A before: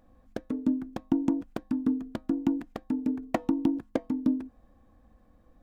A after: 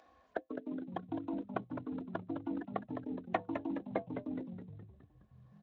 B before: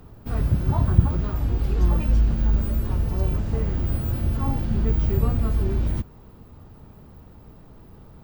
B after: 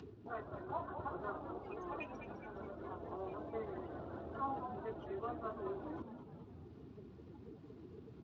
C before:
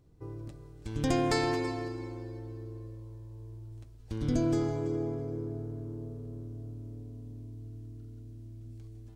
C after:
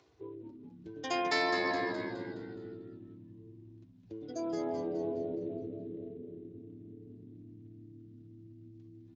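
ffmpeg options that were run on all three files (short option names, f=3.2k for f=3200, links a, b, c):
-filter_complex "[0:a]afftdn=nr=29:nf=-40,areverse,acompressor=threshold=-34dB:ratio=5,areverse,highpass=77,acrossover=split=410 4400:gain=0.0708 1 0.158[a][b][c];[a][b][c]amix=inputs=3:normalize=0,aecho=1:1:2.8:0.37,asplit=7[d][e][f][g][h][i][j];[e]adelay=209,afreqshift=-77,volume=-7.5dB[k];[f]adelay=418,afreqshift=-154,volume=-13.5dB[l];[g]adelay=627,afreqshift=-231,volume=-19.5dB[m];[h]adelay=836,afreqshift=-308,volume=-25.6dB[n];[i]adelay=1045,afreqshift=-385,volume=-31.6dB[o];[j]adelay=1254,afreqshift=-462,volume=-37.6dB[p];[d][k][l][m][n][o][p]amix=inputs=7:normalize=0,crystalizer=i=4:c=0,lowshelf=f=110:g=3.5,acompressor=mode=upward:threshold=-50dB:ratio=2.5,volume=6.5dB" -ar 16000 -c:a libspeex -b:a 34k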